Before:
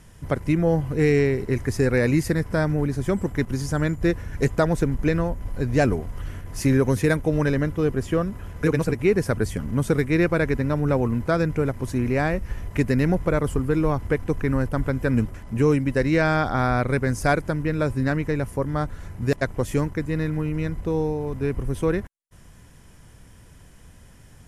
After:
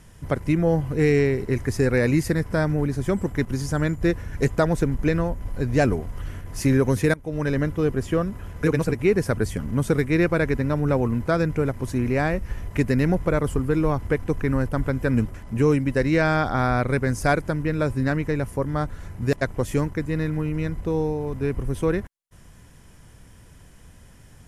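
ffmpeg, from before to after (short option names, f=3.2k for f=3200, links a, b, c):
-filter_complex "[0:a]asplit=2[a][b];[a]atrim=end=7.14,asetpts=PTS-STARTPTS,afade=t=out:st=7.136:d=0.004:c=hsin:silence=0.0891251[c];[b]atrim=start=7.14,asetpts=PTS-STARTPTS,afade=t=in:d=0.45:silence=0.0891251[d];[c][d]concat=n=2:v=0:a=1"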